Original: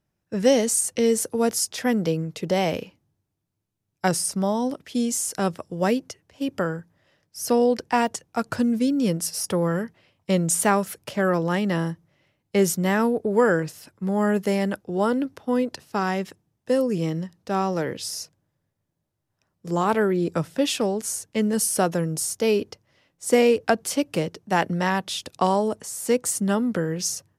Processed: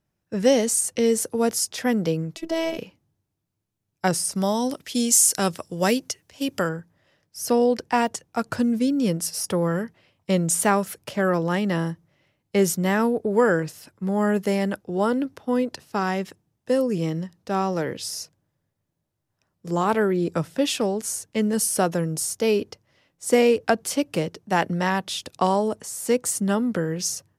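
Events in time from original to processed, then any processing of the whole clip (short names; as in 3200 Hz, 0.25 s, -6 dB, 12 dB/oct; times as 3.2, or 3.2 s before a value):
2.36–2.78 robotiser 326 Hz
4.35–6.69 high shelf 2600 Hz +11 dB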